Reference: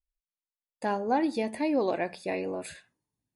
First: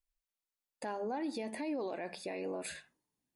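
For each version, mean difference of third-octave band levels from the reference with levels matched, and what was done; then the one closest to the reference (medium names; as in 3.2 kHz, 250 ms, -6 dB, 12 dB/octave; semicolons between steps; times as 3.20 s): 3.5 dB: peaking EQ 99 Hz -12.5 dB 0.81 oct; hum notches 50/100/150/200 Hz; compression 2:1, threshold -35 dBFS, peak gain reduction 7.5 dB; peak limiter -31 dBFS, peak gain reduction 9.5 dB; trim +1 dB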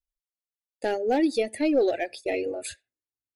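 6.0 dB: in parallel at -3.5 dB: hard clipper -26.5 dBFS, distortion -10 dB; on the sum: gate -39 dBFS, range -11 dB; static phaser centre 430 Hz, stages 4; reverb removal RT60 2 s; trim +4 dB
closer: first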